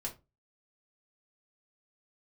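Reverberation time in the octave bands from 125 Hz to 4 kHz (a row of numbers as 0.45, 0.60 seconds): 0.35, 0.30, 0.25, 0.25, 0.20, 0.20 seconds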